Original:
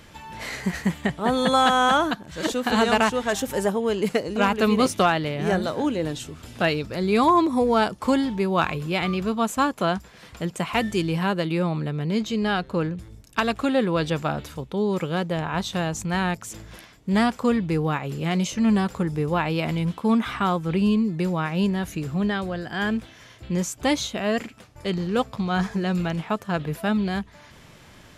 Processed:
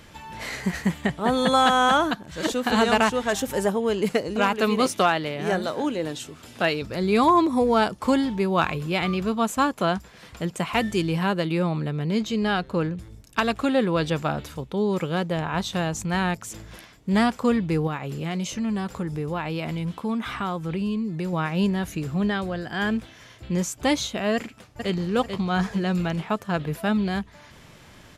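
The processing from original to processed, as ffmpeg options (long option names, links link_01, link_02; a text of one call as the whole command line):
ffmpeg -i in.wav -filter_complex "[0:a]asettb=1/sr,asplit=3[link_01][link_02][link_03];[link_01]atrim=end=4.404[link_04];[link_02]atrim=start=4.4:end=6.82,asetpts=PTS-STARTPTS,afade=type=in:duration=0.004:curve=qsin,afade=type=out:start_time=2.416:duration=0.004:curve=qsin,highpass=frequency=240:poles=1[link_05];[link_03]atrim=start=6.816[link_06];[link_04][link_05]acrossfade=duration=0.004:curve1=hsin:curve2=qsin[link_07];[link_07][link_06]acrossfade=duration=0.004:curve1=qsin:curve2=hsin,asettb=1/sr,asplit=3[link_08][link_09][link_10];[link_08]atrim=end=17.874[link_11];[link_09]atrim=start=17.87:end=21.33,asetpts=PTS-STARTPTS,afade=type=in:duration=0.004:curve=qsin,afade=type=out:start_time=3.456:duration=0.004:curve=qsin,acompressor=threshold=-28dB:ratio=2:attack=3.2:release=140:knee=1:detection=peak[link_12];[link_10]atrim=start=21.326[link_13];[link_11][link_12]acrossfade=duration=0.004:curve1=hsin:curve2=qsin[link_14];[link_14][link_13]acrossfade=duration=0.004:curve1=qsin:curve2=hsin,asplit=2[link_15][link_16];[link_16]afade=type=in:start_time=24.35:duration=0.01,afade=type=out:start_time=24.93:duration=0.01,aecho=0:1:440|880|1320|1760|2200:0.501187|0.200475|0.08019|0.032076|0.0128304[link_17];[link_15][link_17]amix=inputs=2:normalize=0" out.wav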